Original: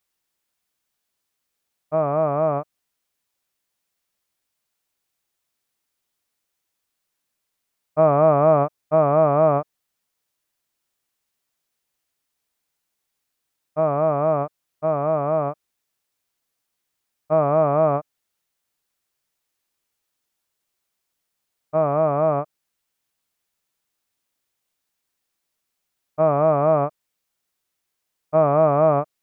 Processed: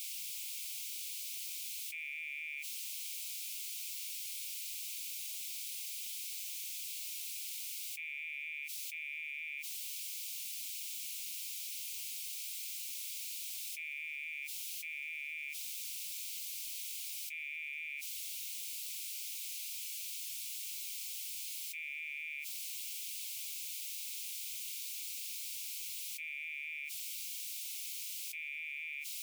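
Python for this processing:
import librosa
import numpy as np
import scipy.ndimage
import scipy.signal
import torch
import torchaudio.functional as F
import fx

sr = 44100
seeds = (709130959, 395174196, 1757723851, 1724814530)

y = scipy.signal.sosfilt(scipy.signal.butter(16, 2200.0, 'highpass', fs=sr, output='sos'), x)
y = fx.env_flatten(y, sr, amount_pct=100)
y = F.gain(torch.from_numpy(y), 8.0).numpy()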